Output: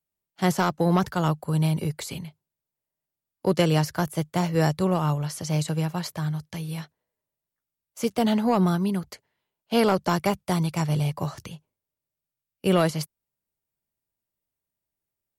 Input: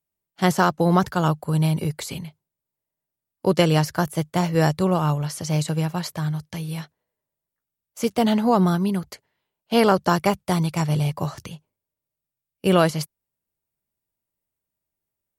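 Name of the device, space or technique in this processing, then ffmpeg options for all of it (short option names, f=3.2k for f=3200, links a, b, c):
one-band saturation: -filter_complex "[0:a]acrossover=split=370|4200[a][b][c];[b]asoftclip=type=tanh:threshold=-12.5dB[d];[a][d][c]amix=inputs=3:normalize=0,volume=-2.5dB"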